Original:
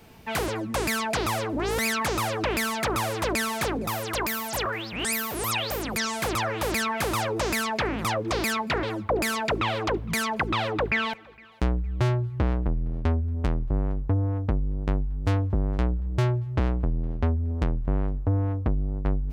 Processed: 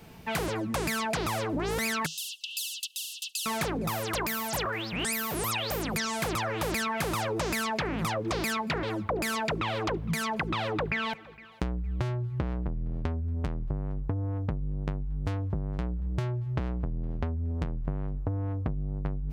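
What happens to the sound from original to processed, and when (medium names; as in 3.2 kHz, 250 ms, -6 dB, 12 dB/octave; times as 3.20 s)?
2.06–3.46 s: brick-wall FIR high-pass 2.6 kHz
whole clip: peaking EQ 160 Hz +10 dB 0.26 oct; compression, threshold -27 dBFS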